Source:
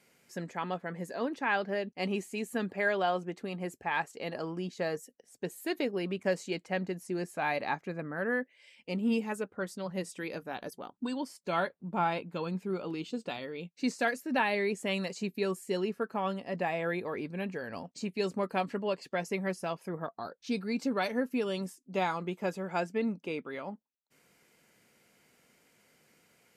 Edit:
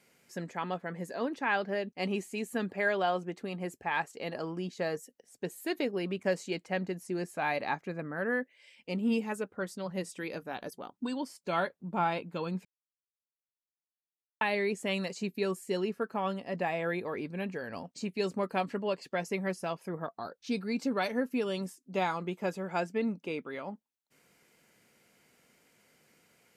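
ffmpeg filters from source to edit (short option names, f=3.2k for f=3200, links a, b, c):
-filter_complex "[0:a]asplit=3[a][b][c];[a]atrim=end=12.65,asetpts=PTS-STARTPTS,afade=t=out:st=12.646:d=0.004:c=hsin[d];[b]atrim=start=12.65:end=14.41,asetpts=PTS-STARTPTS,volume=0[e];[c]atrim=start=14.41,asetpts=PTS-STARTPTS,afade=t=in:d=0.004:c=hsin[f];[d][e][f]concat=n=3:v=0:a=1"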